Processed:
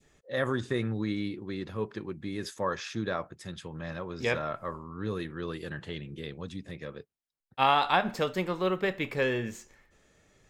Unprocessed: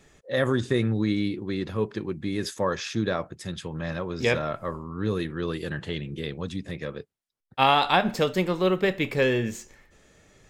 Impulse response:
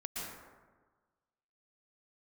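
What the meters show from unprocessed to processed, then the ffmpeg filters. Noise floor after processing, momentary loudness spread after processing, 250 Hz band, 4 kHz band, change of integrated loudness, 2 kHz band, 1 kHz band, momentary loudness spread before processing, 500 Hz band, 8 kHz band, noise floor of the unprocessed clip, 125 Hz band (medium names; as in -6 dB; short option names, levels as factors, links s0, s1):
-69 dBFS, 14 LU, -6.5 dB, -6.0 dB, -5.0 dB, -4.0 dB, -3.0 dB, 12 LU, -5.5 dB, -7.0 dB, -62 dBFS, -7.0 dB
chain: -af "adynamicequalizer=threshold=0.0178:dfrequency=1200:dqfactor=0.77:tfrequency=1200:tqfactor=0.77:attack=5:release=100:ratio=0.375:range=2.5:mode=boostabove:tftype=bell,volume=0.447"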